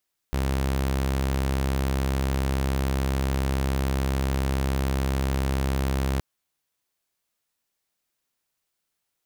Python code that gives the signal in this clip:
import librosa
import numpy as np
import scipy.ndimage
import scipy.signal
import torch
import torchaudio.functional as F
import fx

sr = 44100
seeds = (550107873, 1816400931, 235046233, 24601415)

y = 10.0 ** (-20.0 / 20.0) * (2.0 * np.mod(67.0 * (np.arange(round(5.87 * sr)) / sr), 1.0) - 1.0)